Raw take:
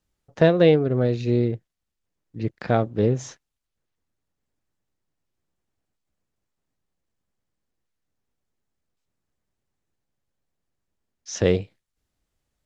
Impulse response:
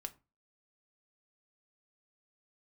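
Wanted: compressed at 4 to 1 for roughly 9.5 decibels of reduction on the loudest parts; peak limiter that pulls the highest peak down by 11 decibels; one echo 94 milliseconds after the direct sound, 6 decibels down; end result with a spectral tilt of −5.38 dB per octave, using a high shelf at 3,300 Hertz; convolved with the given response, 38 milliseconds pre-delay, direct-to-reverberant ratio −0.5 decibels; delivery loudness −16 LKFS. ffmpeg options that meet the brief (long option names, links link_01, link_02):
-filter_complex "[0:a]highshelf=frequency=3300:gain=3,acompressor=threshold=-22dB:ratio=4,alimiter=limit=-19dB:level=0:latency=1,aecho=1:1:94:0.501,asplit=2[link_01][link_02];[1:a]atrim=start_sample=2205,adelay=38[link_03];[link_02][link_03]afir=irnorm=-1:irlink=0,volume=3.5dB[link_04];[link_01][link_04]amix=inputs=2:normalize=0,volume=12.5dB"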